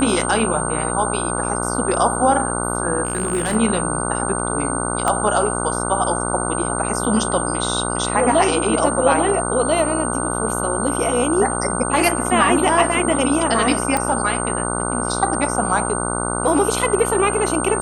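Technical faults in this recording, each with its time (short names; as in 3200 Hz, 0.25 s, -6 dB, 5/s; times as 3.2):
buzz 60 Hz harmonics 25 -24 dBFS
tone 8700 Hz -25 dBFS
3.05–3.56 clipped -15 dBFS
5.08 pop -6 dBFS
13.97 pop -6 dBFS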